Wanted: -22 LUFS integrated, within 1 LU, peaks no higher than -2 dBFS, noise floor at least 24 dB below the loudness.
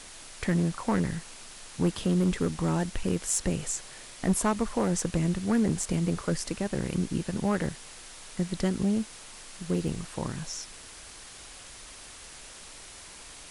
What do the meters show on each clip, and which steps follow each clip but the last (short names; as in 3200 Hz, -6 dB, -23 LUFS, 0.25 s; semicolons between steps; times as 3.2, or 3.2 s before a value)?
clipped 0.5%; flat tops at -18.0 dBFS; noise floor -47 dBFS; noise floor target -54 dBFS; loudness -29.5 LUFS; peak -18.0 dBFS; loudness target -22.0 LUFS
-> clip repair -18 dBFS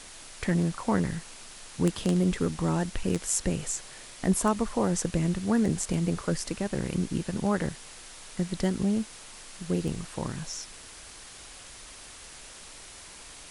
clipped 0.0%; noise floor -47 dBFS; noise floor target -53 dBFS
-> denoiser 6 dB, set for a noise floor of -47 dBFS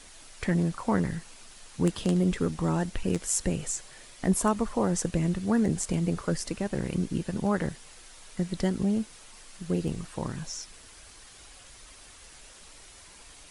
noise floor -51 dBFS; noise floor target -53 dBFS
-> denoiser 6 dB, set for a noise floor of -51 dBFS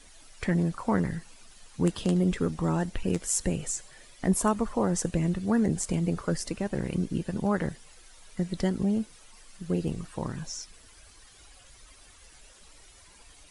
noise floor -54 dBFS; loudness -29.0 LUFS; peak -10.0 dBFS; loudness target -22.0 LUFS
-> gain +7 dB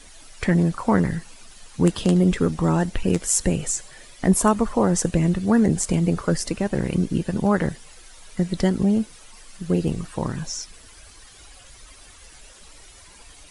loudness -22.0 LUFS; peak -3.0 dBFS; noise floor -47 dBFS